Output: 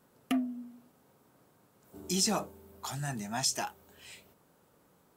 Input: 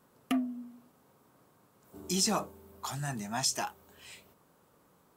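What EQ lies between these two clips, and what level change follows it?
parametric band 1,100 Hz −4.5 dB 0.34 octaves
0.0 dB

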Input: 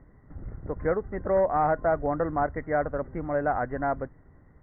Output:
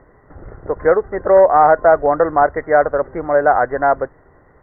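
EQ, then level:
flat-topped bell 840 Hz +12 dB 2.8 octaves
+1.5 dB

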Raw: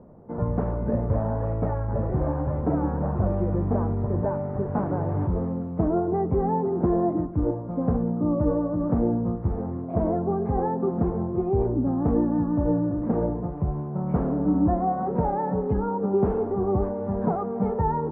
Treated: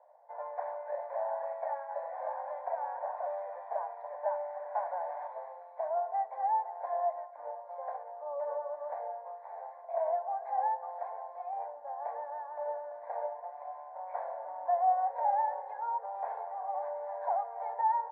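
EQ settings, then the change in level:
Butterworth high-pass 580 Hz 48 dB per octave
high-frequency loss of the air 110 metres
phaser with its sweep stopped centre 1,900 Hz, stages 8
0.0 dB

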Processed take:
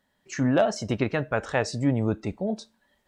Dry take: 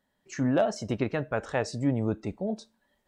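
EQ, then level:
RIAA equalisation playback
spectral tilt +4 dB per octave
+4.0 dB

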